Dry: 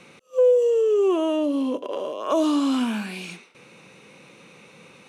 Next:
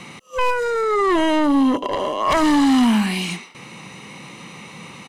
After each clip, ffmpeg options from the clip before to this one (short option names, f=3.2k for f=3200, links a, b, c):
-af "aeval=exprs='0.316*(cos(1*acos(clip(val(0)/0.316,-1,1)))-cos(1*PI/2))+0.0316*(cos(2*acos(clip(val(0)/0.316,-1,1)))-cos(2*PI/2))+0.158*(cos(3*acos(clip(val(0)/0.316,-1,1)))-cos(3*PI/2))+0.112*(cos(5*acos(clip(val(0)/0.316,-1,1)))-cos(5*PI/2))+0.00447*(cos(8*acos(clip(val(0)/0.316,-1,1)))-cos(8*PI/2))':c=same,aecho=1:1:1:0.55,volume=18dB,asoftclip=hard,volume=-18dB,volume=8.5dB"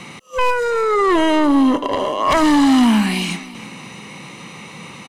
-af "aecho=1:1:336|672|1008:0.112|0.0494|0.0217,volume=2.5dB"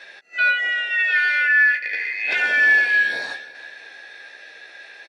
-filter_complex "[0:a]afftfilt=real='real(if(lt(b,272),68*(eq(floor(b/68),0)*3+eq(floor(b/68),1)*0+eq(floor(b/68),2)*1+eq(floor(b/68),3)*2)+mod(b,68),b),0)':imag='imag(if(lt(b,272),68*(eq(floor(b/68),0)*3+eq(floor(b/68),1)*0+eq(floor(b/68),2)*1+eq(floor(b/68),3)*2)+mod(b,68),b),0)':win_size=2048:overlap=0.75,bandpass=f=600:t=q:w=1:csg=0,asplit=2[a][b];[b]adelay=15,volume=-5.5dB[c];[a][c]amix=inputs=2:normalize=0,volume=3.5dB"